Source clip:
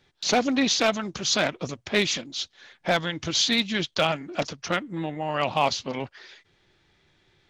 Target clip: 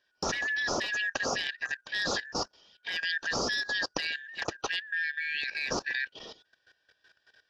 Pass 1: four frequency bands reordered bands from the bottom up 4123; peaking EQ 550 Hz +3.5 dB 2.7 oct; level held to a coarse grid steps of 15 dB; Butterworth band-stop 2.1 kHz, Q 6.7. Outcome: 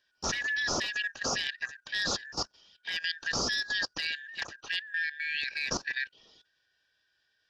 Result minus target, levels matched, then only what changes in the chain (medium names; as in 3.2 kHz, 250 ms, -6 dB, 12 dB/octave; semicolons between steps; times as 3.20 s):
500 Hz band -4.0 dB
change: peaking EQ 550 Hz +11 dB 2.7 oct